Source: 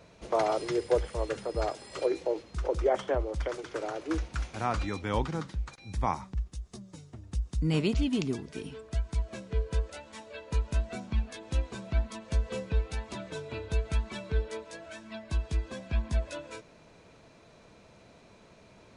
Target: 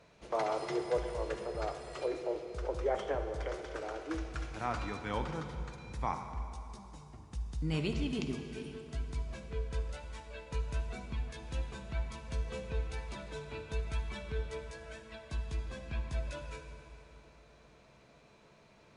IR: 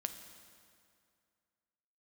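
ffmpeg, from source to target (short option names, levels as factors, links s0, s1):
-filter_complex "[0:a]equalizer=f=1700:w=0.4:g=4[s0];[1:a]atrim=start_sample=2205,asetrate=31311,aresample=44100[s1];[s0][s1]afir=irnorm=-1:irlink=0,volume=0.376"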